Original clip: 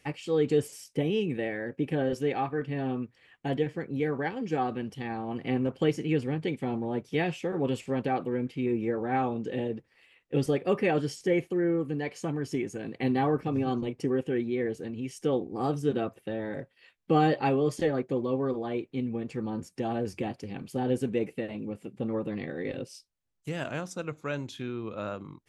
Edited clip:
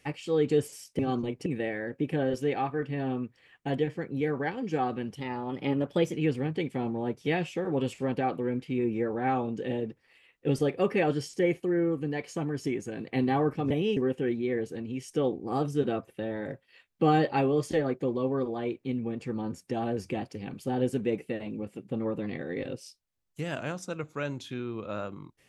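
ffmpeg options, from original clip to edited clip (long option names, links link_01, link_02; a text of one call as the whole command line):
ffmpeg -i in.wav -filter_complex "[0:a]asplit=7[link_01][link_02][link_03][link_04][link_05][link_06][link_07];[link_01]atrim=end=0.992[link_08];[link_02]atrim=start=13.578:end=14.052[link_09];[link_03]atrim=start=1.248:end=4.994[link_10];[link_04]atrim=start=4.99:end=6.01,asetpts=PTS-STARTPTS,asetrate=48069,aresample=44100[link_11];[link_05]atrim=start=6.006:end=13.582[link_12];[link_06]atrim=start=0.988:end=1.252[link_13];[link_07]atrim=start=14.048[link_14];[link_08][link_09]acrossfade=duration=0.004:curve1=hsin:curve2=hsin[link_15];[link_15][link_10]acrossfade=duration=0.004:curve1=hsin:curve2=hsin[link_16];[link_16][link_11]acrossfade=duration=0.004:curve1=hsin:curve2=hsin[link_17];[link_17][link_12]acrossfade=duration=0.004:curve1=hsin:curve2=hsin[link_18];[link_18][link_13]acrossfade=duration=0.004:curve1=hsin:curve2=hsin[link_19];[link_19][link_14]acrossfade=duration=0.004:curve1=hsin:curve2=hsin" out.wav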